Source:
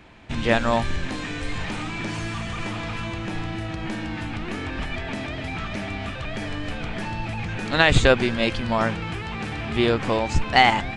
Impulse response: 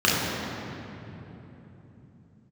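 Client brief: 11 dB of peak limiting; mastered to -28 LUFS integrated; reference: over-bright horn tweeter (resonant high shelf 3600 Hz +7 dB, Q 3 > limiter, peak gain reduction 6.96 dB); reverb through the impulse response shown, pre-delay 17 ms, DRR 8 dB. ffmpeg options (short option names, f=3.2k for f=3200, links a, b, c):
-filter_complex "[0:a]alimiter=limit=-14.5dB:level=0:latency=1,asplit=2[a][b];[1:a]atrim=start_sample=2205,adelay=17[c];[b][c]afir=irnorm=-1:irlink=0,volume=-28dB[d];[a][d]amix=inputs=2:normalize=0,highshelf=f=3.6k:t=q:w=3:g=7,volume=0.5dB,alimiter=limit=-17dB:level=0:latency=1"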